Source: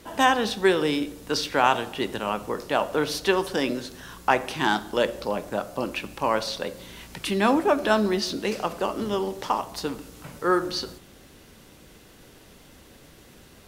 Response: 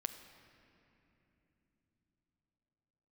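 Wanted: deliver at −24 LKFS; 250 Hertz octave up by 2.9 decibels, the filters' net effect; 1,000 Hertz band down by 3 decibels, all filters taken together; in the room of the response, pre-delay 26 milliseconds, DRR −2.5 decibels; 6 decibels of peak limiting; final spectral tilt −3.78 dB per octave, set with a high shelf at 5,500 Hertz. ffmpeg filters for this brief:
-filter_complex "[0:a]equalizer=frequency=250:width_type=o:gain=4,equalizer=frequency=1000:width_type=o:gain=-4.5,highshelf=frequency=5500:gain=9,alimiter=limit=-11.5dB:level=0:latency=1,asplit=2[link_01][link_02];[1:a]atrim=start_sample=2205,adelay=26[link_03];[link_02][link_03]afir=irnorm=-1:irlink=0,volume=3.5dB[link_04];[link_01][link_04]amix=inputs=2:normalize=0,volume=-2.5dB"

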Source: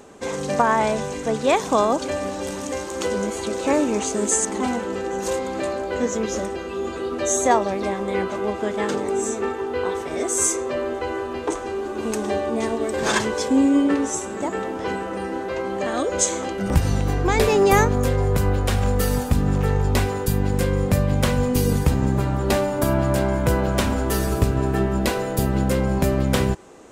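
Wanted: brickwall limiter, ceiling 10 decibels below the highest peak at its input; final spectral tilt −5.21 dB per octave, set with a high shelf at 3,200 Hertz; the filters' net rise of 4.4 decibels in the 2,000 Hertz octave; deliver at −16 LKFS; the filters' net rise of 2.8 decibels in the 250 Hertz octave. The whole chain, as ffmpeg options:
ffmpeg -i in.wav -af "equalizer=frequency=250:width_type=o:gain=3.5,equalizer=frequency=2000:width_type=o:gain=7.5,highshelf=frequency=3200:gain=-6.5,volume=7dB,alimiter=limit=-5dB:level=0:latency=1" out.wav

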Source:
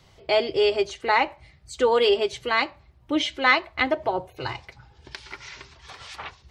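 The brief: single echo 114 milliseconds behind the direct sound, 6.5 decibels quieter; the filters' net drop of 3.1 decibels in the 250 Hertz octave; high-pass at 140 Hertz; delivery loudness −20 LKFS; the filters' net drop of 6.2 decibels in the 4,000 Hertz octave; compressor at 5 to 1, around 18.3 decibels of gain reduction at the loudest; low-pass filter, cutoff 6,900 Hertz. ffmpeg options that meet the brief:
ffmpeg -i in.wav -af "highpass=140,lowpass=6900,equalizer=frequency=250:width_type=o:gain=-4,equalizer=frequency=4000:width_type=o:gain=-8.5,acompressor=threshold=-38dB:ratio=5,aecho=1:1:114:0.473,volume=20.5dB" out.wav

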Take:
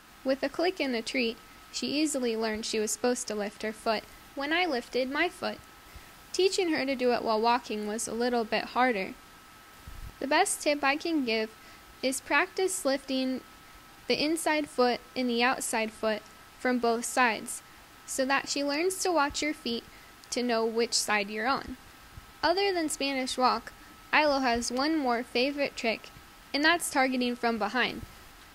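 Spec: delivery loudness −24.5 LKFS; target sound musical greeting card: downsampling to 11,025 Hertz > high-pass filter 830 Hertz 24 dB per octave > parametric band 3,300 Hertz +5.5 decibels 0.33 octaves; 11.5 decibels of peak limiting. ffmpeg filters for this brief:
ffmpeg -i in.wav -af "alimiter=limit=-20dB:level=0:latency=1,aresample=11025,aresample=44100,highpass=frequency=830:width=0.5412,highpass=frequency=830:width=1.3066,equalizer=frequency=3300:width_type=o:width=0.33:gain=5.5,volume=10.5dB" out.wav

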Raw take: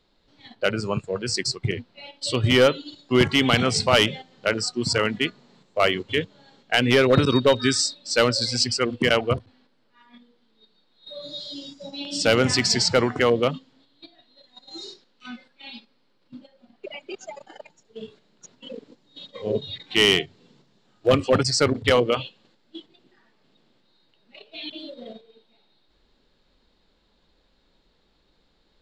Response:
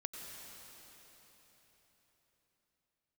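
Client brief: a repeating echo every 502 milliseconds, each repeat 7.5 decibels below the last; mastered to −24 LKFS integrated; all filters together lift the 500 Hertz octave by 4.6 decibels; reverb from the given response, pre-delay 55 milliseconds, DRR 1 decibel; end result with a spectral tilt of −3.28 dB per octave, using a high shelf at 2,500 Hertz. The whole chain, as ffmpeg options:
-filter_complex "[0:a]equalizer=frequency=500:width_type=o:gain=5,highshelf=frequency=2500:gain=6,aecho=1:1:502|1004|1506|2008|2510:0.422|0.177|0.0744|0.0312|0.0131,asplit=2[link_01][link_02];[1:a]atrim=start_sample=2205,adelay=55[link_03];[link_02][link_03]afir=irnorm=-1:irlink=0,volume=0dB[link_04];[link_01][link_04]amix=inputs=2:normalize=0,volume=-8.5dB"

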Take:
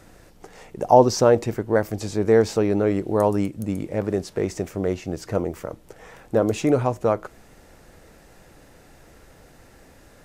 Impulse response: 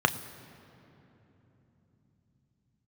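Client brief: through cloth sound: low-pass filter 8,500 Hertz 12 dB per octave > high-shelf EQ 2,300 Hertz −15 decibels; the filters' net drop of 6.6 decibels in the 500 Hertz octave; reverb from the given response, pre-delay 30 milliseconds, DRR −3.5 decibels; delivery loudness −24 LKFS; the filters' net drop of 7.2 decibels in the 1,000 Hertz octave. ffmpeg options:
-filter_complex "[0:a]equalizer=frequency=500:width_type=o:gain=-6,equalizer=frequency=1000:width_type=o:gain=-4.5,asplit=2[link_01][link_02];[1:a]atrim=start_sample=2205,adelay=30[link_03];[link_02][link_03]afir=irnorm=-1:irlink=0,volume=-10dB[link_04];[link_01][link_04]amix=inputs=2:normalize=0,lowpass=8500,highshelf=frequency=2300:gain=-15,volume=-2.5dB"

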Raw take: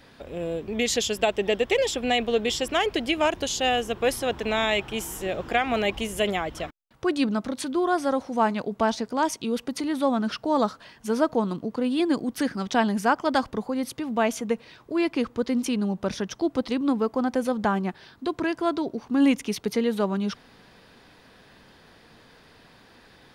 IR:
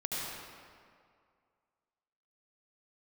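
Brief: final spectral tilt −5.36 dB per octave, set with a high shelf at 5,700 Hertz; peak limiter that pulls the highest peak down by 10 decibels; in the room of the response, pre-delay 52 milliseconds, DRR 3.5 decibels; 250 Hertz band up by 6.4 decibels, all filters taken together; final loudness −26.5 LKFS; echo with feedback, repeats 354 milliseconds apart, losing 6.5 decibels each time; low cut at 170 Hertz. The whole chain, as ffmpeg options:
-filter_complex "[0:a]highpass=170,equalizer=frequency=250:width_type=o:gain=8.5,highshelf=frequency=5700:gain=-4.5,alimiter=limit=-15.5dB:level=0:latency=1,aecho=1:1:354|708|1062|1416|1770|2124:0.473|0.222|0.105|0.0491|0.0231|0.0109,asplit=2[link_01][link_02];[1:a]atrim=start_sample=2205,adelay=52[link_03];[link_02][link_03]afir=irnorm=-1:irlink=0,volume=-8.5dB[link_04];[link_01][link_04]amix=inputs=2:normalize=0,volume=-4dB"

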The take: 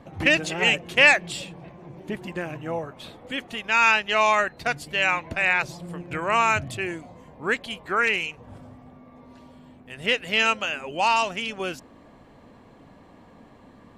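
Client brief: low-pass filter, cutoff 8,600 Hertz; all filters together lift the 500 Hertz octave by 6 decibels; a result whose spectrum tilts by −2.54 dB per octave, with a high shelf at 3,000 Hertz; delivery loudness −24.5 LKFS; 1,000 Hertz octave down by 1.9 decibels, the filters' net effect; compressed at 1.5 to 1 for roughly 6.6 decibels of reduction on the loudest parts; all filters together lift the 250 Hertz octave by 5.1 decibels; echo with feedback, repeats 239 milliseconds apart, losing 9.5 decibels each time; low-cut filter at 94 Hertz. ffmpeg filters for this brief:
ffmpeg -i in.wav -af "highpass=94,lowpass=8600,equalizer=frequency=250:width_type=o:gain=4.5,equalizer=frequency=500:width_type=o:gain=8,equalizer=frequency=1000:width_type=o:gain=-4.5,highshelf=frequency=3000:gain=-3.5,acompressor=threshold=-29dB:ratio=1.5,aecho=1:1:239|478|717|956:0.335|0.111|0.0365|0.012,volume=3dB" out.wav

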